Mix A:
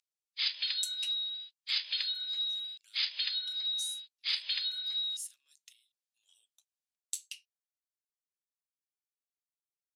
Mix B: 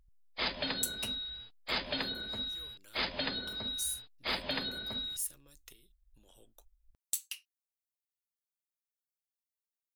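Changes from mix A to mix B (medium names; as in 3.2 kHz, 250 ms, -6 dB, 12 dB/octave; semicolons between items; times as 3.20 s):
background: add tilt EQ -2.5 dB/octave; master: remove Butterworth band-pass 4.9 kHz, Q 0.78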